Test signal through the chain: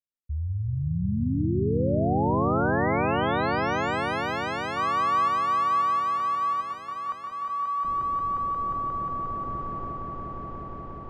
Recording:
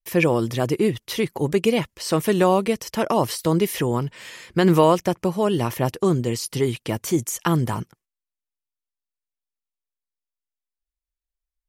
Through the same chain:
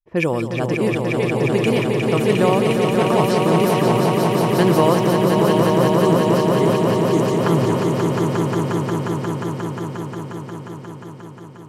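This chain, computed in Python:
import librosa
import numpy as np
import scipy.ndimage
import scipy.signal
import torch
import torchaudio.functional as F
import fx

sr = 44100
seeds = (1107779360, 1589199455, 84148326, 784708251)

y = fx.env_lowpass(x, sr, base_hz=450.0, full_db=-16.0)
y = fx.echo_swell(y, sr, ms=178, loudest=5, wet_db=-4.5)
y = y * 10.0 ** (-1.0 / 20.0)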